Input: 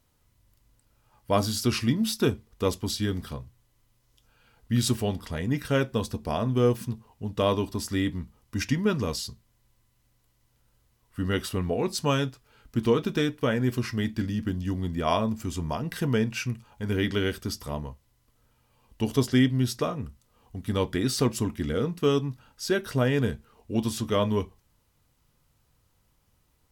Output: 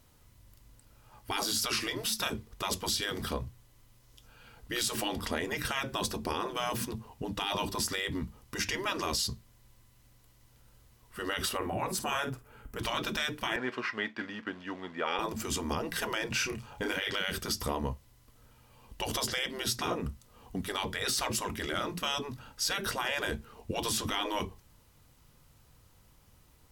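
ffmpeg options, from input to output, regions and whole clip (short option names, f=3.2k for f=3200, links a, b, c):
-filter_complex "[0:a]asettb=1/sr,asplit=3[a][b][c];[a]atrim=end=11.574[d];[b]atrim=start=11.57:end=12.79,asetpts=PTS-STARTPTS,afade=t=in:d=0.004:c=qsin,afade=t=out:st=1.216:d=0.004:c=qsin,equalizer=f=4.4k:t=o:w=1.5:g=-13.5,asplit=2[e][f];[f]adelay=49,volume=-12dB[g];[e][g]amix=inputs=2:normalize=0,atrim=end_sample=53802[h];[c]atrim=start=12.786[i];[d][h]acrossfade=d=0.004:c1=hsin:c2=qsin[j];[j][i]acrossfade=d=0.004:c1=qsin:c2=hsin,asettb=1/sr,asplit=3[k][l][m];[k]atrim=end=13.564[n];[l]atrim=start=13.56:end=15.19,asetpts=PTS-STARTPTS,afade=t=in:d=0.004:c=qsin,afade=t=out:st=1.626:d=0.004:c=qsin,acrusher=bits=7:mode=log:mix=0:aa=0.000001,highpass=710,lowpass=2.2k[o];[m]atrim=start=15.186[p];[n][o]acrossfade=d=0.004:c1=hsin:c2=qsin[q];[q][p]acrossfade=d=0.004:c1=qsin:c2=hsin,asettb=1/sr,asplit=3[r][s][t];[r]atrim=end=16.284[u];[s]atrim=start=16.28:end=17.18,asetpts=PTS-STARTPTS,afade=t=in:d=0.004:c=qsin,afade=t=out:st=0.896:d=0.004:c=qsin,equalizer=f=12k:t=o:w=0.7:g=-3.5,asplit=2[v][w];[w]adelay=30,volume=-5dB[x];[v][x]amix=inputs=2:normalize=0,atrim=end_sample=39690[y];[t]atrim=start=17.176[z];[u][y]acrossfade=d=0.004:c1=hsin:c2=qsin[aa];[aa][z]acrossfade=d=0.004:c1=qsin:c2=hsin,afftfilt=real='re*lt(hypot(re,im),0.126)':imag='im*lt(hypot(re,im),0.126)':win_size=1024:overlap=0.75,alimiter=level_in=3dB:limit=-24dB:level=0:latency=1:release=81,volume=-3dB,volume=6.5dB"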